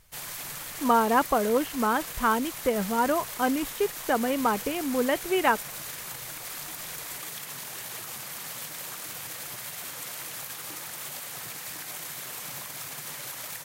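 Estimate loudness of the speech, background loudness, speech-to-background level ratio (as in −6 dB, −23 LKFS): −26.5 LKFS, −35.5 LKFS, 9.0 dB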